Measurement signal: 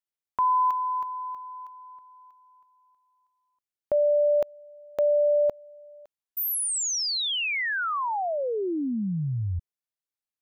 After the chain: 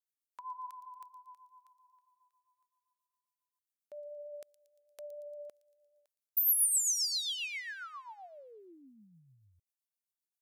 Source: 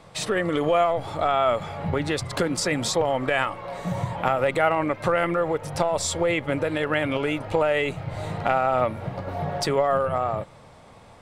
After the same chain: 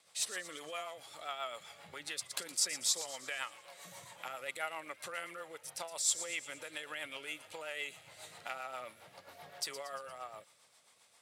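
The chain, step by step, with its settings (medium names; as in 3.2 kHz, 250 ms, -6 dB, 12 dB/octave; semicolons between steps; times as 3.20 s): differentiator; rotary cabinet horn 7.5 Hz; feedback echo behind a high-pass 116 ms, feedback 55%, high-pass 4 kHz, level -11 dB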